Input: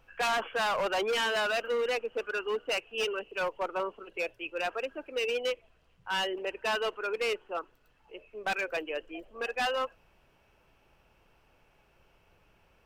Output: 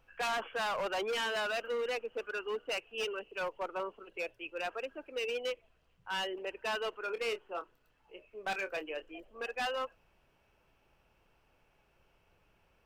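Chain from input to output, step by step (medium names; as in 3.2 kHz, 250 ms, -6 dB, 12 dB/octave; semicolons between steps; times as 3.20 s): 7.00–9.20 s: doubling 26 ms -10 dB; trim -5 dB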